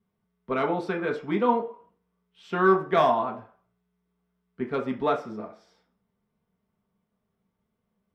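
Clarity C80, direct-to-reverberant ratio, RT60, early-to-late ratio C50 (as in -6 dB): 16.0 dB, 0.5 dB, 0.45 s, 11.5 dB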